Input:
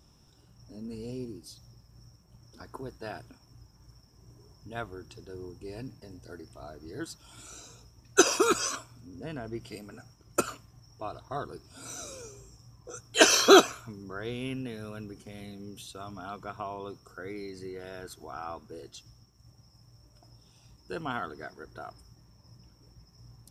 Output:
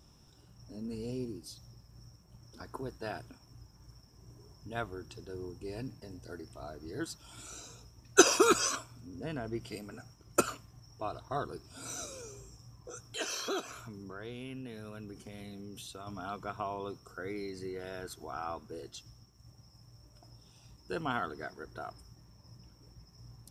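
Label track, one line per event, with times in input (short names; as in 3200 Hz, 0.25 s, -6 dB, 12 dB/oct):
12.050000	16.070000	compressor 2.5:1, threshold -42 dBFS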